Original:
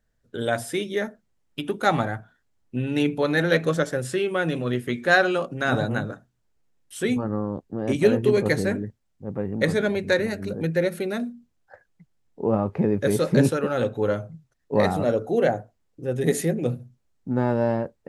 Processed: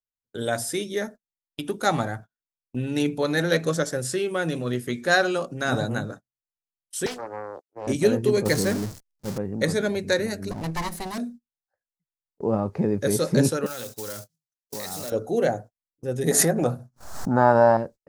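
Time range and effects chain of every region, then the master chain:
0:07.06–0:07.87: high-pass filter 400 Hz 24 dB per octave + highs frequency-modulated by the lows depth 0.47 ms
0:08.45–0:09.38: converter with a step at zero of −28 dBFS + downward expander −28 dBFS
0:10.51–0:11.18: lower of the sound and its delayed copy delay 1 ms + notch filter 1,400 Hz, Q 25 + one half of a high-frequency compander encoder only
0:13.66–0:15.12: one scale factor per block 5 bits + tilt shelving filter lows −8 dB, about 1,500 Hz + downward compressor 8 to 1, threshold −29 dBFS
0:16.31–0:17.77: flat-topped bell 1,000 Hz +13 dB + background raised ahead of every attack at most 56 dB per second
whole clip: high shelf with overshoot 3,900 Hz +7 dB, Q 1.5; noise gate −37 dBFS, range −31 dB; level −1.5 dB

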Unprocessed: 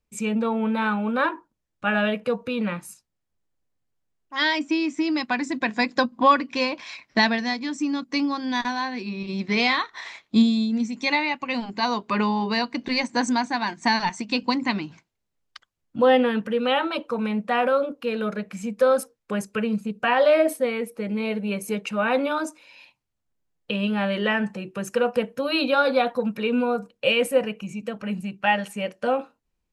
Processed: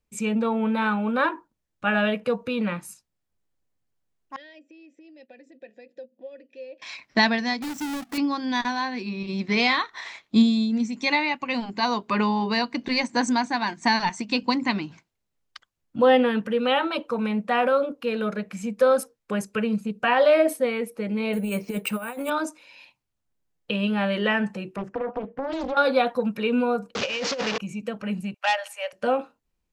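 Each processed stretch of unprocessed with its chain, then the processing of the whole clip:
0:04.36–0:06.82: parametric band 1,700 Hz −12.5 dB 1.8 octaves + downward compressor, threshold −30 dBFS + formant filter e
0:07.62–0:08.18: each half-wave held at its own peak + downward compressor 2 to 1, threshold −36 dBFS
0:21.33–0:22.30: compressor whose output falls as the input rises −27 dBFS, ratio −0.5 + bad sample-rate conversion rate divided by 4×, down filtered, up hold
0:24.76–0:25.77: low-pass filter 1,200 Hz + downward compressor, threshold −24 dBFS + highs frequency-modulated by the lows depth 0.78 ms
0:26.95–0:27.58: linear delta modulator 32 kbit/s, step −22.5 dBFS + high-pass filter 350 Hz 6 dB per octave + compressor whose output falls as the input rises −27 dBFS
0:28.34–0:28.93: Butterworth high-pass 550 Hz 72 dB per octave + saturating transformer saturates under 2,100 Hz
whole clip: no processing

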